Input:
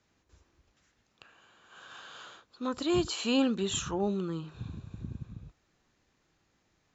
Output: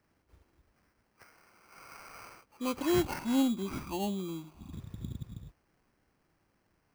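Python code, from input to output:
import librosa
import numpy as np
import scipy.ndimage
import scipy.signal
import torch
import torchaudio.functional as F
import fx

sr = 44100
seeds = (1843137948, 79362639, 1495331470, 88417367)

y = fx.freq_compress(x, sr, knee_hz=1100.0, ratio=1.5)
y = fx.fixed_phaser(y, sr, hz=460.0, stages=6, at=(3.19, 4.73))
y = fx.sample_hold(y, sr, seeds[0], rate_hz=3600.0, jitter_pct=0)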